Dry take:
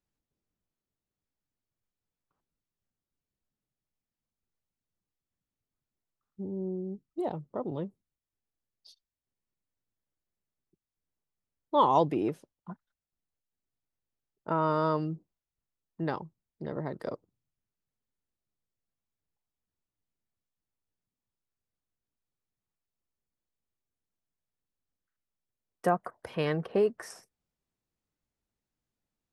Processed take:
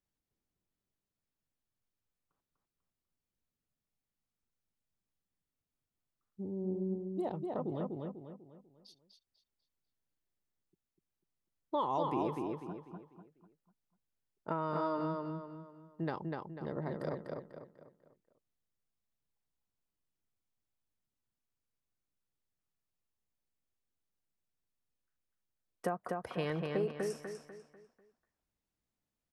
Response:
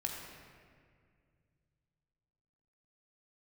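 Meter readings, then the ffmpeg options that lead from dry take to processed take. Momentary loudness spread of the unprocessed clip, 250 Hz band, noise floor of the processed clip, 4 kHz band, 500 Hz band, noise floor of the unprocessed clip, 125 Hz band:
20 LU, -3.5 dB, under -85 dBFS, -6.5 dB, -5.5 dB, under -85 dBFS, -4.0 dB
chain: -filter_complex "[0:a]acompressor=threshold=-27dB:ratio=6,asplit=2[a][b];[b]adelay=247,lowpass=f=4.7k:p=1,volume=-3dB,asplit=2[c][d];[d]adelay=247,lowpass=f=4.7k:p=1,volume=0.4,asplit=2[e][f];[f]adelay=247,lowpass=f=4.7k:p=1,volume=0.4,asplit=2[g][h];[h]adelay=247,lowpass=f=4.7k:p=1,volume=0.4,asplit=2[i][j];[j]adelay=247,lowpass=f=4.7k:p=1,volume=0.4[k];[c][e][g][i][k]amix=inputs=5:normalize=0[l];[a][l]amix=inputs=2:normalize=0,volume=-3.5dB"

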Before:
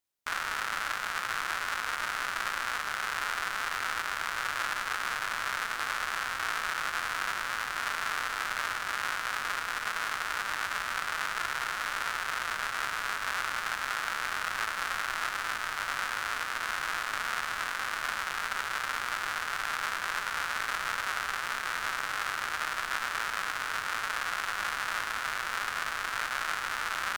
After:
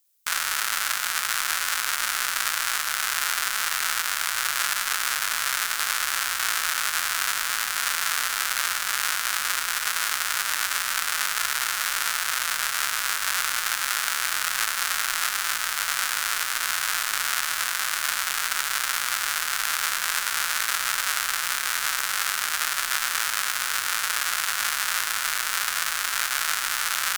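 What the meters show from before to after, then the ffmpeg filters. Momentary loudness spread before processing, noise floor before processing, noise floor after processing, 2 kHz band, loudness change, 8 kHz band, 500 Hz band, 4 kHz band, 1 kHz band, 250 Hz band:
1 LU, -36 dBFS, -29 dBFS, +5.0 dB, +8.0 dB, +16.5 dB, -0.5 dB, +10.5 dB, +2.5 dB, n/a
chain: -af "crystalizer=i=7.5:c=0,volume=-2dB"

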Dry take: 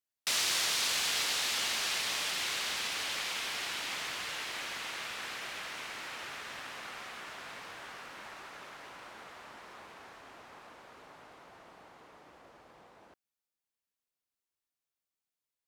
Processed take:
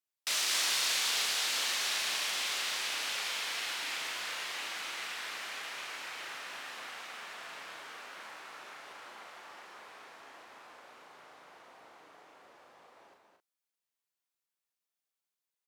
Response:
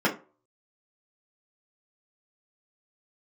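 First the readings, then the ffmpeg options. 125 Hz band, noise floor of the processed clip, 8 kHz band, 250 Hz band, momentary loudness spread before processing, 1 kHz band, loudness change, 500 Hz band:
n/a, under -85 dBFS, +0.5 dB, -5.0 dB, 21 LU, -0.5 dB, +0.5 dB, -2.0 dB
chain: -filter_complex "[0:a]highpass=f=440:p=1,asplit=2[a][b];[b]adelay=37,volume=-5dB[c];[a][c]amix=inputs=2:normalize=0,asplit=2[d][e];[e]aecho=0:1:225:0.562[f];[d][f]amix=inputs=2:normalize=0,volume=-2dB"

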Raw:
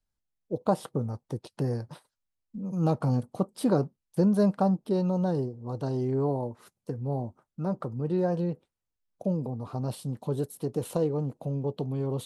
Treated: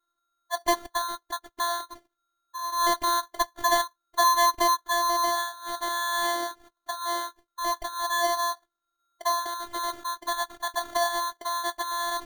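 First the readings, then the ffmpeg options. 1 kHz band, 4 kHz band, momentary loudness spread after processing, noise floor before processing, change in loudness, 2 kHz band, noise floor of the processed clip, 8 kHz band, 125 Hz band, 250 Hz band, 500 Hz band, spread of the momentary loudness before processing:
+13.5 dB, +20.0 dB, 10 LU, -85 dBFS, +2.5 dB, +21.0 dB, -83 dBFS, n/a, under -30 dB, -14.0 dB, -2.5 dB, 10 LU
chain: -af "afftfilt=real='real(if(lt(b,736),b+184*(1-2*mod(floor(b/184),2)),b),0)':imag='imag(if(lt(b,736),b+184*(1-2*mod(floor(b/184),2)),b),0)':win_size=2048:overlap=0.75,acrusher=samples=17:mix=1:aa=0.000001,afftfilt=real='hypot(re,im)*cos(PI*b)':imag='0':win_size=512:overlap=0.75,volume=4dB"

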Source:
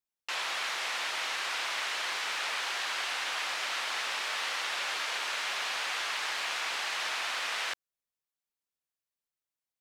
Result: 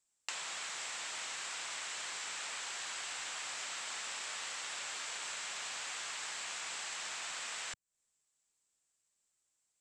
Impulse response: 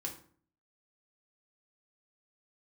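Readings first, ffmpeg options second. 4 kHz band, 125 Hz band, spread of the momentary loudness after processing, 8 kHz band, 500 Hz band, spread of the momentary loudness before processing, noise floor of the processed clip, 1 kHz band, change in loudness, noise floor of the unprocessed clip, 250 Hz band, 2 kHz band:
-8.5 dB, n/a, 0 LU, 0.0 dB, -10.5 dB, 0 LU, -82 dBFS, -10.5 dB, -8.0 dB, under -85 dBFS, -7.0 dB, -10.0 dB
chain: -filter_complex "[0:a]lowpass=f=7.7k:t=q:w=7,acrossover=split=160[a][b];[b]acompressor=threshold=-45dB:ratio=10[c];[a][c]amix=inputs=2:normalize=0,volume=5.5dB"

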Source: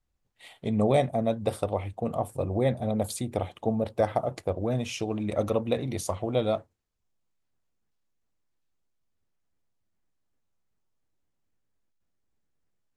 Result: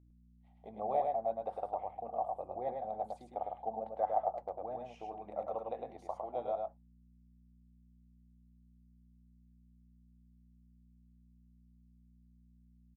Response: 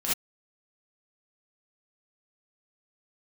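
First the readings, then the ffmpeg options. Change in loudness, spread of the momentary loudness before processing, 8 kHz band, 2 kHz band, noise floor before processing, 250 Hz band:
-10.0 dB, 7 LU, under -30 dB, under -20 dB, -77 dBFS, -23.0 dB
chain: -filter_complex "[0:a]agate=range=-33dB:threshold=-40dB:ratio=3:detection=peak,bandpass=f=780:t=q:w=5.5:csg=0,aeval=exprs='val(0)+0.000891*(sin(2*PI*60*n/s)+sin(2*PI*2*60*n/s)/2+sin(2*PI*3*60*n/s)/3+sin(2*PI*4*60*n/s)/4+sin(2*PI*5*60*n/s)/5)':c=same,asplit=2[a][b];[b]aecho=0:1:105:0.668[c];[a][c]amix=inputs=2:normalize=0,volume=-1dB"

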